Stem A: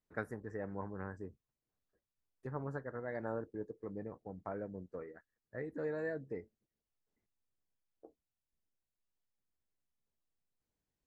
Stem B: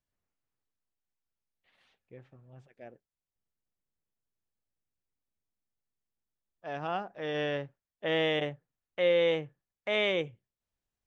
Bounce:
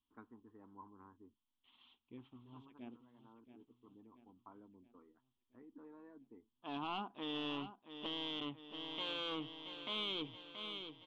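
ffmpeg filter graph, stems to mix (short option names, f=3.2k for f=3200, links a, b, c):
-filter_complex "[0:a]lowpass=1.9k,lowshelf=f=190:g=-9.5,volume=-15dB[a];[1:a]volume=30.5dB,asoftclip=hard,volume=-30.5dB,volume=-4.5dB,asplit=3[b][c][d];[c]volume=-11.5dB[e];[d]apad=whole_len=488090[f];[a][f]sidechaincompress=threshold=-59dB:ratio=4:attack=11:release=1490[g];[e]aecho=0:1:677|1354|2031|2708|3385|4062|4739|5416:1|0.53|0.281|0.149|0.0789|0.0418|0.0222|0.0117[h];[g][b][h]amix=inputs=3:normalize=0,firequalizer=gain_entry='entry(110,0);entry(160,-9);entry(240,12);entry(550,-14);entry(1000,11);entry(1700,-12);entry(3200,14);entry(4800,-11);entry(7500,-17)':delay=0.05:min_phase=1,alimiter=level_in=8dB:limit=-24dB:level=0:latency=1,volume=-8dB"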